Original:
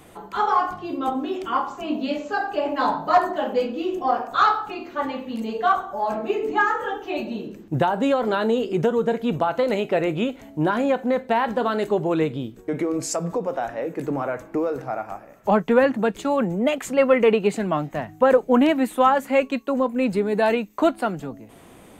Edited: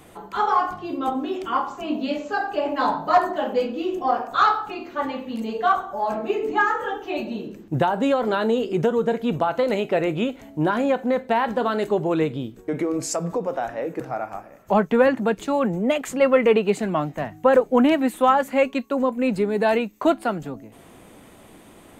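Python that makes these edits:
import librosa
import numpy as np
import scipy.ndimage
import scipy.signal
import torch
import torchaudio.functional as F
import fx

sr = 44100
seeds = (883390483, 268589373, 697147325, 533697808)

y = fx.edit(x, sr, fx.cut(start_s=14.0, length_s=0.77), tone=tone)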